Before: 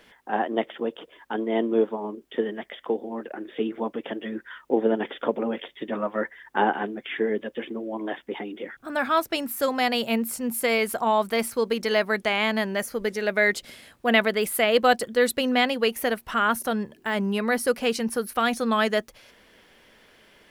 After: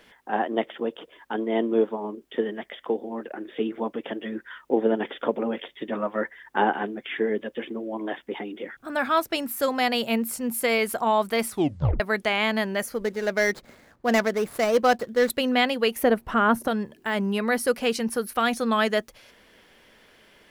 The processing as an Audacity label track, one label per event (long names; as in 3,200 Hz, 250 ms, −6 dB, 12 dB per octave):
11.480000	11.480000	tape stop 0.52 s
12.940000	15.300000	running median over 15 samples
16.030000	16.680000	tilt shelving filter lows +7.5 dB, about 1,400 Hz